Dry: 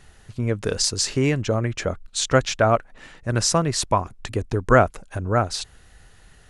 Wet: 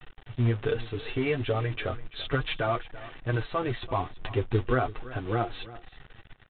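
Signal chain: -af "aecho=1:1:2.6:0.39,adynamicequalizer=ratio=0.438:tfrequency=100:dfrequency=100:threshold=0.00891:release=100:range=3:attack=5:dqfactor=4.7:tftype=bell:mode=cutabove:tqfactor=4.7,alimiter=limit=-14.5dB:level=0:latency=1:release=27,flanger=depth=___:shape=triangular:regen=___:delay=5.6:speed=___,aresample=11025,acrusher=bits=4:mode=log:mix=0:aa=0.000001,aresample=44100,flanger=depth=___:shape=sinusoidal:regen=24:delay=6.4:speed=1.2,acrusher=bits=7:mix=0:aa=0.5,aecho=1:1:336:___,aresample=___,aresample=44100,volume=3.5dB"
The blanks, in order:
5.8, -10, 0.37, 2.3, 0.133, 8000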